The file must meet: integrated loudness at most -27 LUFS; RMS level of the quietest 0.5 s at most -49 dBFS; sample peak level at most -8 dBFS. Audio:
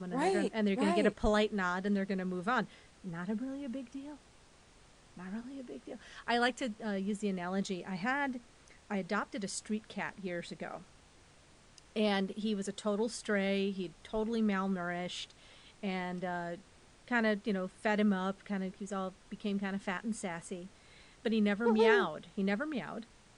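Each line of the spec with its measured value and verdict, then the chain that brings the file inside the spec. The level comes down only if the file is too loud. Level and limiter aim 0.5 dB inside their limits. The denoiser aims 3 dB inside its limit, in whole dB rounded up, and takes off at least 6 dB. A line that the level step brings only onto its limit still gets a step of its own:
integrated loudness -34.5 LUFS: pass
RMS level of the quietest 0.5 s -61 dBFS: pass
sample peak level -15.5 dBFS: pass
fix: none needed

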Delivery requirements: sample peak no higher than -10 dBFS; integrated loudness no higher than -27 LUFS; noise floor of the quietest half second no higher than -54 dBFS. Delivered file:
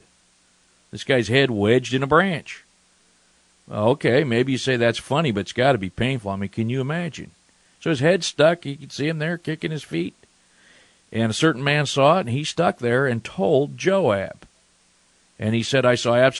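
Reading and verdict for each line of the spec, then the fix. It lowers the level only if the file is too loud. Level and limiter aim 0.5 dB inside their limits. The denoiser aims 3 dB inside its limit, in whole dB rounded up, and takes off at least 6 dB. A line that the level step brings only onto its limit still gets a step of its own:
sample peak -3.5 dBFS: fail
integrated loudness -21.0 LUFS: fail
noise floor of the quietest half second -60 dBFS: pass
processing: trim -6.5 dB; peak limiter -10.5 dBFS

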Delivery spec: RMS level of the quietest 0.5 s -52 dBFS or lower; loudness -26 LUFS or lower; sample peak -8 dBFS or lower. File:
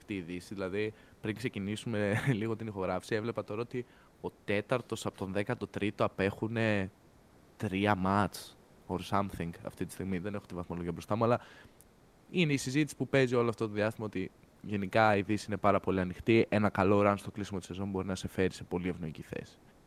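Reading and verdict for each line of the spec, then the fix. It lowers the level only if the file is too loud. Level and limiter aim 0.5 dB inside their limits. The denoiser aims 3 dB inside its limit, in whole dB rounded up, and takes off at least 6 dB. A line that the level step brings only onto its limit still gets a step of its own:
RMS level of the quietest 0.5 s -61 dBFS: pass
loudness -33.0 LUFS: pass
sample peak -11.0 dBFS: pass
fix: none needed

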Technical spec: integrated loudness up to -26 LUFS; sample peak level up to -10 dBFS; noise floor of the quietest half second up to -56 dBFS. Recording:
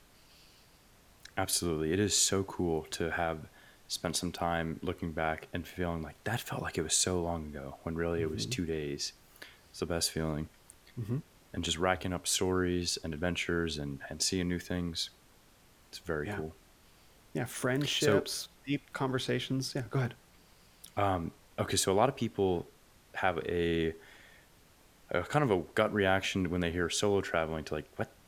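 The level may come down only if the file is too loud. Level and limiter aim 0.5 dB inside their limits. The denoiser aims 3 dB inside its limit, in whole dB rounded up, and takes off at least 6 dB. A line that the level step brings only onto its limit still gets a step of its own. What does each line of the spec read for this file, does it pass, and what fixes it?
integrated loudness -33.0 LUFS: pass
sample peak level -11.5 dBFS: pass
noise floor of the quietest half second -62 dBFS: pass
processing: none needed

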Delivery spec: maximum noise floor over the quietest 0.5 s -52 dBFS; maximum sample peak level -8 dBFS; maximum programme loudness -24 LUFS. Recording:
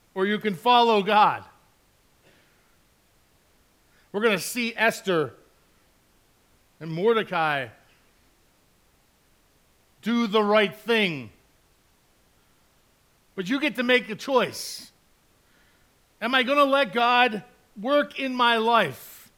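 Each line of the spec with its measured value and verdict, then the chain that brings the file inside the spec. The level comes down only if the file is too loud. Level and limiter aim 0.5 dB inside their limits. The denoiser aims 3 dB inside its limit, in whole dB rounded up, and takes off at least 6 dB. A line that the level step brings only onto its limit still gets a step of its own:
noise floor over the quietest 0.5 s -63 dBFS: pass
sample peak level -6.0 dBFS: fail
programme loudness -23.0 LUFS: fail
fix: trim -1.5 dB; peak limiter -8.5 dBFS

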